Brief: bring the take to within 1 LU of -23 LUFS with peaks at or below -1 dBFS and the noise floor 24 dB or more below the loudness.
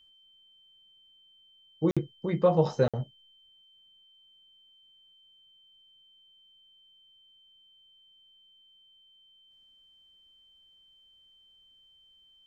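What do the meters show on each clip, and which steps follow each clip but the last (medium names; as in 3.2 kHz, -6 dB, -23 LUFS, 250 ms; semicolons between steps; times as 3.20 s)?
dropouts 2; longest dropout 56 ms; steady tone 3.1 kHz; tone level -58 dBFS; loudness -28.0 LUFS; peak level -11.5 dBFS; loudness target -23.0 LUFS
-> interpolate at 1.91/2.88 s, 56 ms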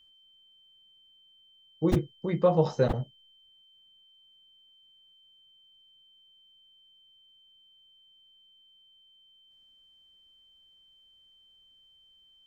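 dropouts 0; steady tone 3.1 kHz; tone level -58 dBFS
-> band-stop 3.1 kHz, Q 30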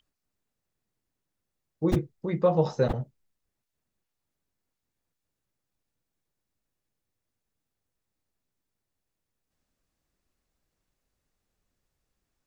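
steady tone not found; loudness -27.5 LUFS; peak level -10.5 dBFS; loudness target -23.0 LUFS
-> trim +4.5 dB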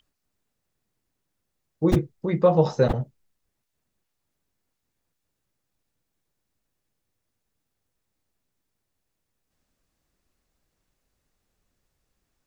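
loudness -23.0 LUFS; peak level -6.0 dBFS; noise floor -80 dBFS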